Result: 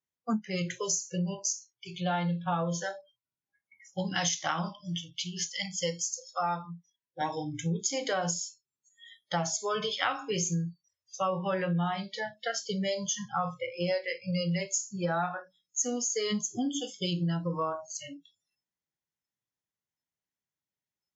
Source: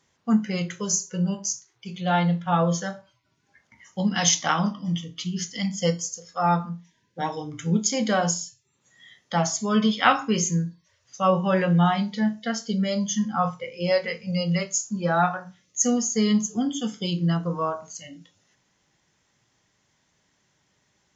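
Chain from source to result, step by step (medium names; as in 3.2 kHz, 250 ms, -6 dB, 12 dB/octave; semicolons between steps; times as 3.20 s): spectral noise reduction 29 dB; 4.81–7.21 s: bass shelf 440 Hz -9 dB; compression 6:1, threshold -27 dBFS, peak gain reduction 14 dB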